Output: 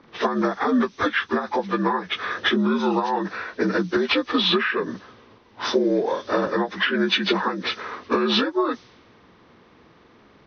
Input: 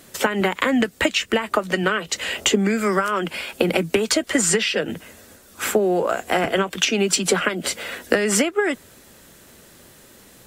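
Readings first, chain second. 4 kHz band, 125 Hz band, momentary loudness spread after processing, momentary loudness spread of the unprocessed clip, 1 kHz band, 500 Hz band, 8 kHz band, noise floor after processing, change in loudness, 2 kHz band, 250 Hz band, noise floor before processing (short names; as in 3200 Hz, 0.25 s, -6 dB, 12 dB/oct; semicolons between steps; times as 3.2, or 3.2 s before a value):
-0.5 dB, -3.5 dB, 8 LU, 7 LU, +1.0 dB, -2.5 dB, -23.5 dB, -54 dBFS, -2.0 dB, -2.5 dB, 0.0 dB, -49 dBFS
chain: inharmonic rescaling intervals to 78%; low-pass opened by the level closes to 1600 Hz, open at -18.5 dBFS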